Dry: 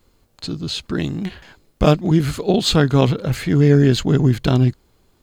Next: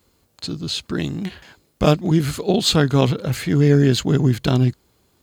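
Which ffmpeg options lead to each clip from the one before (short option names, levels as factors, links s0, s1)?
-af "highpass=61,highshelf=f=4500:g=5,volume=0.841"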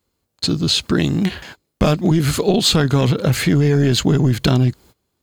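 -af "agate=range=0.1:threshold=0.00562:ratio=16:detection=peak,apsyclip=3.76,acompressor=threshold=0.316:ratio=6,volume=0.794"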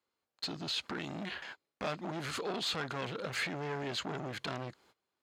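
-af "alimiter=limit=0.251:level=0:latency=1:release=53,asoftclip=type=hard:threshold=0.126,bandpass=f=1500:t=q:w=0.58:csg=0,volume=0.422"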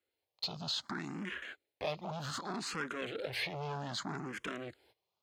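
-filter_complex "[0:a]asplit=2[s0][s1];[s1]afreqshift=0.64[s2];[s0][s2]amix=inputs=2:normalize=1,volume=1.19"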